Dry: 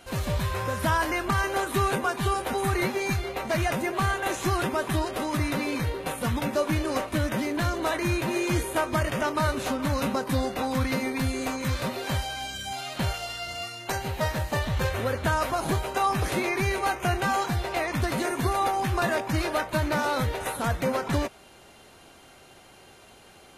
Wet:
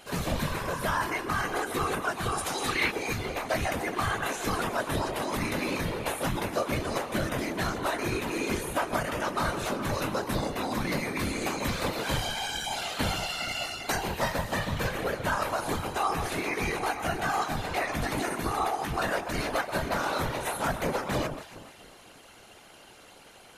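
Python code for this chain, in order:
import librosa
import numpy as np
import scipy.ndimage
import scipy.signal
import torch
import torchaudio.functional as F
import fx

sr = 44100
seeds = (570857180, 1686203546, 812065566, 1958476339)

y = fx.echo_alternate(x, sr, ms=140, hz=1400.0, feedback_pct=56, wet_db=-9.0)
y = fx.whisperise(y, sr, seeds[0])
y = fx.peak_eq(y, sr, hz=fx.line((2.37, 9000.0), (2.9, 2400.0)), db=14.0, octaves=1.6, at=(2.37, 2.9), fade=0.02)
y = fx.rider(y, sr, range_db=4, speed_s=0.5)
y = fx.low_shelf(y, sr, hz=470.0, db=-4.5)
y = y * 10.0 ** (-1.5 / 20.0)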